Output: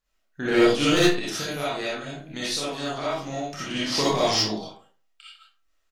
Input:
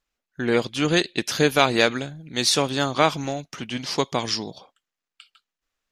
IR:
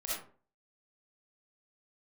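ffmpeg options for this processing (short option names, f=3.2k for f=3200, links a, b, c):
-filter_complex "[0:a]asettb=1/sr,asplit=3[a][b][c];[a]atrim=end=0.994[d];[b]atrim=start=0.99:end=3.71,asetpts=PTS-STARTPTS,afade=t=in:d=0.004:c=qsin,afade=t=out:st=2.716:d=0.004:c=qsin,acompressor=threshold=-30dB:ratio=6[e];[c]atrim=start=3.706[f];[d][e]acrossfade=d=0.004:c1=hsin:c2=qsin[g];[g][f]acrossfade=d=0.004:c1=qsin:c2=hsin,asoftclip=type=hard:threshold=-15dB,aecho=1:1:28|79:0.562|0.15[h];[1:a]atrim=start_sample=2205[i];[h][i]afir=irnorm=-1:irlink=0,volume=1dB"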